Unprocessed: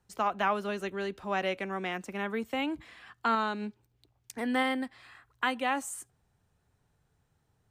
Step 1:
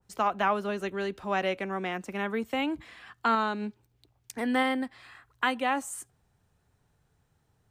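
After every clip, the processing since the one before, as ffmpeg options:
-af "adynamicequalizer=threshold=0.01:dfrequency=1600:dqfactor=0.7:tfrequency=1600:tqfactor=0.7:attack=5:release=100:ratio=0.375:range=2.5:mode=cutabove:tftype=highshelf,volume=2.5dB"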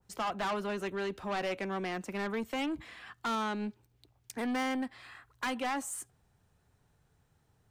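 -af "asoftclip=type=tanh:threshold=-29.5dB"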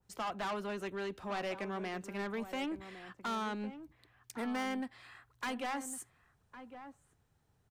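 -filter_complex "[0:a]asplit=2[a][b];[b]adelay=1108,volume=-11dB,highshelf=f=4k:g=-24.9[c];[a][c]amix=inputs=2:normalize=0,volume=-4dB"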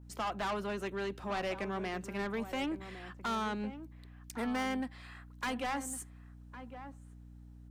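-af "aeval=exprs='val(0)+0.00224*(sin(2*PI*60*n/s)+sin(2*PI*2*60*n/s)/2+sin(2*PI*3*60*n/s)/3+sin(2*PI*4*60*n/s)/4+sin(2*PI*5*60*n/s)/5)':c=same,volume=2dB"

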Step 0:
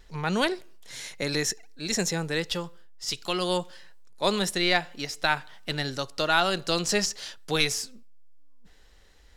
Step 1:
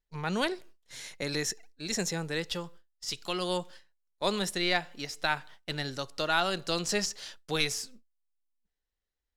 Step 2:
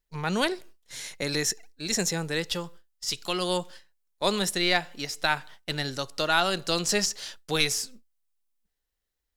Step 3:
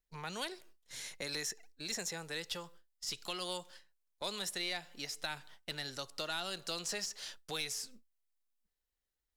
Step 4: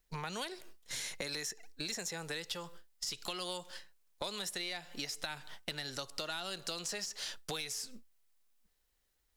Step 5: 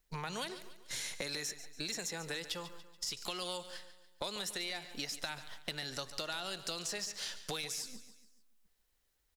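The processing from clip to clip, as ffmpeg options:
-af "agate=range=-28dB:threshold=-43dB:ratio=16:detection=peak,volume=-4.5dB"
-af "highshelf=f=7k:g=5.5,volume=3.5dB"
-filter_complex "[0:a]acrossover=split=510|2800[a][b][c];[a]acompressor=threshold=-43dB:ratio=4[d];[b]acompressor=threshold=-35dB:ratio=4[e];[c]acompressor=threshold=-30dB:ratio=4[f];[d][e][f]amix=inputs=3:normalize=0,asoftclip=type=tanh:threshold=-20.5dB,volume=-6.5dB"
-af "acompressor=threshold=-48dB:ratio=6,volume=10.5dB"
-af "aecho=1:1:143|286|429|572:0.211|0.0951|0.0428|0.0193"

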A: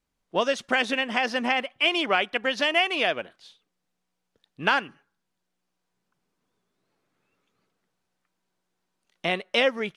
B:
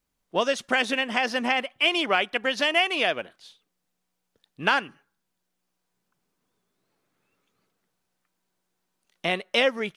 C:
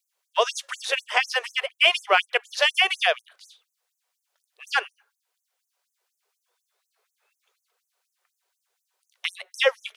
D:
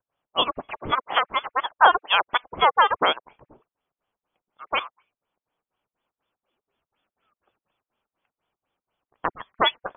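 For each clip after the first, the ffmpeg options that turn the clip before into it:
-af "highshelf=f=9.5k:g=9"
-af "afftfilt=real='re*gte(b*sr/1024,350*pow(6100/350,0.5+0.5*sin(2*PI*4.1*pts/sr)))':imag='im*gte(b*sr/1024,350*pow(6100/350,0.5+0.5*sin(2*PI*4.1*pts/sr)))':win_size=1024:overlap=0.75,volume=4.5dB"
-af "aexciter=amount=8:drive=2.7:freq=2.9k,lowpass=f=3.3k:t=q:w=0.5098,lowpass=f=3.3k:t=q:w=0.6013,lowpass=f=3.3k:t=q:w=0.9,lowpass=f=3.3k:t=q:w=2.563,afreqshift=-3900,volume=-4dB"

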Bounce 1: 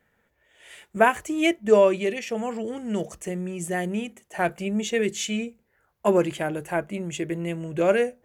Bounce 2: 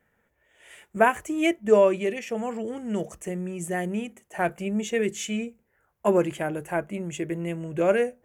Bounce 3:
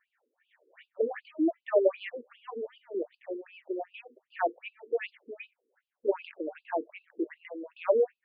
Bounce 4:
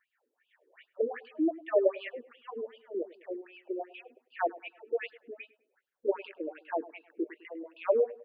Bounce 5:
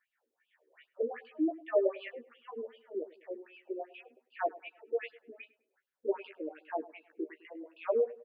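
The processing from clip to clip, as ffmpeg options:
-af "equalizer=f=4.2k:t=o:w=0.82:g=-7.5,volume=-1dB"
-af "afftfilt=real='re*between(b*sr/1024,340*pow(3600/340,0.5+0.5*sin(2*PI*2.6*pts/sr))/1.41,340*pow(3600/340,0.5+0.5*sin(2*PI*2.6*pts/sr))*1.41)':imag='im*between(b*sr/1024,340*pow(3600/340,0.5+0.5*sin(2*PI*2.6*pts/sr))/1.41,340*pow(3600/340,0.5+0.5*sin(2*PI*2.6*pts/sr))*1.41)':win_size=1024:overlap=0.75"
-filter_complex "[0:a]asplit=2[a][b];[b]adelay=103,lowpass=f=1.6k:p=1,volume=-18.5dB,asplit=2[c][d];[d]adelay=103,lowpass=f=1.6k:p=1,volume=0.43,asplit=2[e][f];[f]adelay=103,lowpass=f=1.6k:p=1,volume=0.43[g];[a][c][e][g]amix=inputs=4:normalize=0,volume=-1.5dB"
-filter_complex "[0:a]asplit=2[a][b];[b]adelay=13,volume=-5dB[c];[a][c]amix=inputs=2:normalize=0,volume=-4.5dB"

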